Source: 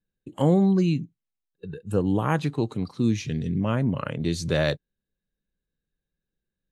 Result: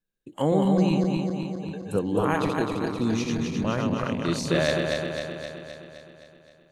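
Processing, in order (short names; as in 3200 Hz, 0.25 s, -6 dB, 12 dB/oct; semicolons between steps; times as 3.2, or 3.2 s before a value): regenerating reverse delay 0.13 s, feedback 77%, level -3 dB; bell 78 Hz -10.5 dB 2.4 oct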